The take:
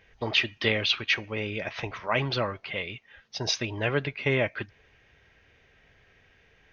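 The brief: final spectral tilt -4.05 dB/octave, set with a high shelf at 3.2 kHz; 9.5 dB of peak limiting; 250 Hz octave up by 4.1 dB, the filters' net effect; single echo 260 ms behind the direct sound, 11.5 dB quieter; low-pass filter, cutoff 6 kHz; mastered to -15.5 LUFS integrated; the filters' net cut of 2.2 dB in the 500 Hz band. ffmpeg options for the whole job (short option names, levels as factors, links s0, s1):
-af "lowpass=6000,equalizer=f=250:t=o:g=6.5,equalizer=f=500:t=o:g=-5,highshelf=f=3200:g=9,alimiter=limit=0.158:level=0:latency=1,aecho=1:1:260:0.266,volume=4.47"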